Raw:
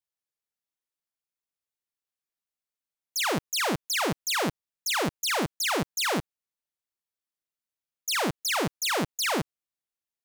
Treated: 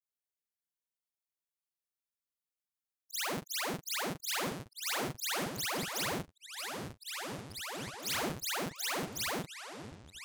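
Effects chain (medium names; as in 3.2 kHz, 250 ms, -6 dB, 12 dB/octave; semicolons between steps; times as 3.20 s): short-time spectra conjugated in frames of 98 ms; treble shelf 9.1 kHz +7 dB; ever faster or slower copies 92 ms, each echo -5 st, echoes 3, each echo -6 dB; trim -6.5 dB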